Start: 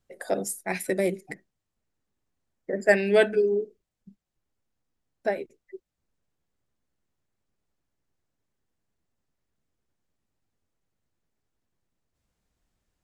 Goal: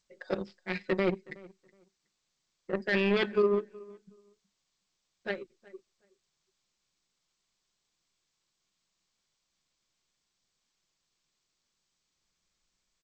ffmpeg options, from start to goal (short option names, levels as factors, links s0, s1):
-filter_complex "[0:a]equalizer=f=720:t=o:w=0.46:g=-11.5,asettb=1/sr,asplit=3[s0][s1][s2];[s0]atrim=end=5.334[s3];[s1]atrim=start=5.33:end=5.75,asetpts=PTS-STARTPTS,afade=t=in:d=0.004:c=qsin,afade=t=out:st=0.416:d=0.004:c=qsin,bandreject=f=2300:w=13[s4];[s2]atrim=start=5.746[s5];[s3][s4]acrossfade=d=0.004:c1=hsin:c2=qsin[s6];[s6][s5]acrossfade=d=0.004:c1=qsin:c2=hsin,aecho=1:1:5.5:0.94,alimiter=limit=0.178:level=0:latency=1:release=11,aeval=exprs='0.178*(cos(1*acos(clip(val(0)/0.178,-1,1)))-cos(1*PI/2))+0.0355*(cos(3*acos(clip(val(0)/0.178,-1,1)))-cos(3*PI/2))+0.00224*(cos(7*acos(clip(val(0)/0.178,-1,1)))-cos(7*PI/2))':c=same,asplit=2[s7][s8];[s8]adelay=370,lowpass=f=2200:p=1,volume=0.0794,asplit=2[s9][s10];[s10]adelay=370,lowpass=f=2200:p=1,volume=0.2[s11];[s7][s9][s11]amix=inputs=3:normalize=0,aresample=11025,aresample=44100,volume=0.794" -ar 16000 -c:a g722